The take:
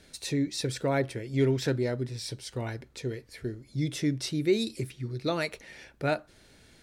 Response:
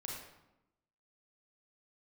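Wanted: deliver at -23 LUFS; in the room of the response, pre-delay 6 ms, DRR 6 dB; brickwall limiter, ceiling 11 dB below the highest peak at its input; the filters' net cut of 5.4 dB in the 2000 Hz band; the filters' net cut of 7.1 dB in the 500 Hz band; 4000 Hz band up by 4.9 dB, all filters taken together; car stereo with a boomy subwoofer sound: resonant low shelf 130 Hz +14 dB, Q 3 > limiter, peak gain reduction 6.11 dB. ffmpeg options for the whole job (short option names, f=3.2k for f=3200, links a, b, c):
-filter_complex "[0:a]equalizer=f=500:t=o:g=-7.5,equalizer=f=2k:t=o:g=-8.5,equalizer=f=4k:t=o:g=7.5,alimiter=level_in=4.5dB:limit=-24dB:level=0:latency=1,volume=-4.5dB,asplit=2[a][b];[1:a]atrim=start_sample=2205,adelay=6[c];[b][c]afir=irnorm=-1:irlink=0,volume=-5dB[d];[a][d]amix=inputs=2:normalize=0,lowshelf=f=130:t=q:w=3:g=14,volume=9.5dB,alimiter=limit=-14dB:level=0:latency=1"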